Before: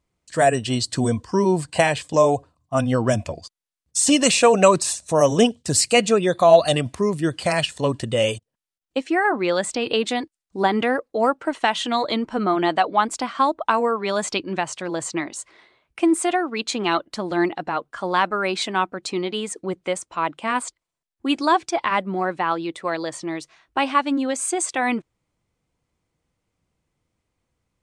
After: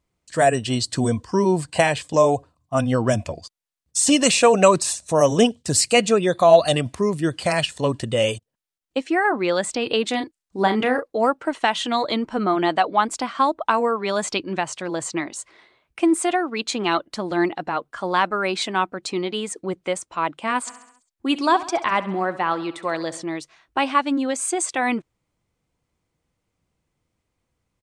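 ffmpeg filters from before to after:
ffmpeg -i in.wav -filter_complex "[0:a]asettb=1/sr,asplit=3[link_01][link_02][link_03];[link_01]atrim=end=10.104[link_04];[link_02]atrim=start=10.1:end=11.1,asetpts=PTS-STARTPTS,afade=type=in:duration=0.004:curve=qsin,afade=type=out:start_time=0.996:duration=0.004:curve=qsin,asplit=2[link_05][link_06];[link_06]adelay=36,volume=-8.5dB[link_07];[link_05][link_07]amix=inputs=2:normalize=0,atrim=end_sample=44100[link_08];[link_03]atrim=start=11.096[link_09];[link_04][link_08]acrossfade=duration=0.004:curve1=hsin:curve2=qsin[link_10];[link_10][link_09]acrossfade=duration=0.004:curve1=qsin:curve2=hsin,asplit=3[link_11][link_12][link_13];[link_11]afade=type=out:start_time=20.66:duration=0.02[link_14];[link_12]aecho=1:1:67|134|201|268|335|402:0.158|0.0935|0.0552|0.0326|0.0192|0.0113,afade=type=in:start_time=20.66:duration=0.02,afade=type=out:start_time=23.21:duration=0.02[link_15];[link_13]afade=type=in:start_time=23.21:duration=0.02[link_16];[link_14][link_15][link_16]amix=inputs=3:normalize=0" out.wav

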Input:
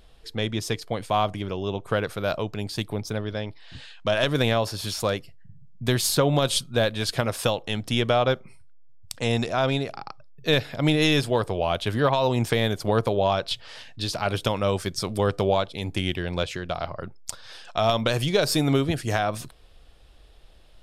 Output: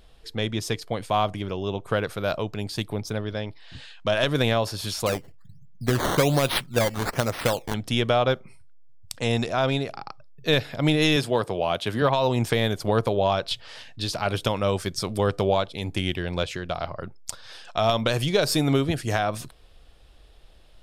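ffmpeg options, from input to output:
ffmpeg -i in.wav -filter_complex "[0:a]asettb=1/sr,asplit=3[link_01][link_02][link_03];[link_01]atrim=end=5.064[link_04];[link_02]atrim=start=5.06:end=7.74,asetpts=PTS-STARTPTS,afade=type=in:duration=0.004:curve=qsin,afade=type=out:start_time=2.676:duration=0.004:curve=qsin,acrusher=samples=12:mix=1:aa=0.000001:lfo=1:lforange=12:lforate=1.2[link_05];[link_03]atrim=start=7.736[link_06];[link_04][link_05]acrossfade=duration=0.004:curve1=hsin:curve2=qsin[link_07];[link_07][link_06]acrossfade=duration=0.004:curve1=qsin:curve2=hsin,asettb=1/sr,asplit=3[link_08][link_09][link_10];[link_08]atrim=end=11.164[link_11];[link_09]atrim=start=11.16:end=12.02,asetpts=PTS-STARTPTS,afade=type=in:duration=0.004:curve=qsin,afade=type=out:start_time=0.856:duration=0.004:curve=qsin,highpass=120[link_12];[link_10]atrim=start=12.016[link_13];[link_11][link_12]acrossfade=duration=0.004:curve1=hsin:curve2=qsin[link_14];[link_14][link_13]acrossfade=duration=0.004:curve1=qsin:curve2=hsin" out.wav

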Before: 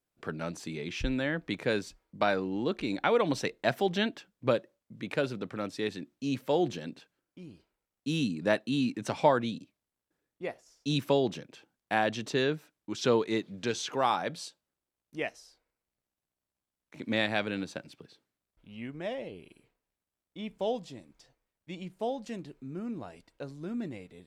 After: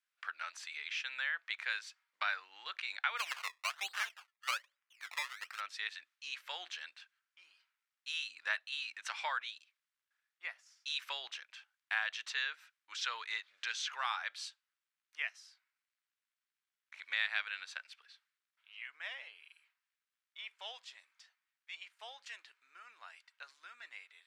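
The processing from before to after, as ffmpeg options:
ffmpeg -i in.wav -filter_complex "[0:a]asplit=3[link_01][link_02][link_03];[link_01]afade=type=out:start_time=3.17:duration=0.02[link_04];[link_02]acrusher=samples=20:mix=1:aa=0.000001:lfo=1:lforange=20:lforate=1.2,afade=type=in:start_time=3.17:duration=0.02,afade=type=out:start_time=5.59:duration=0.02[link_05];[link_03]afade=type=in:start_time=5.59:duration=0.02[link_06];[link_04][link_05][link_06]amix=inputs=3:normalize=0,highpass=frequency=1400:width=0.5412,highpass=frequency=1400:width=1.3066,aemphasis=mode=reproduction:type=75kf,acompressor=threshold=-45dB:ratio=1.5,volume=6.5dB" out.wav

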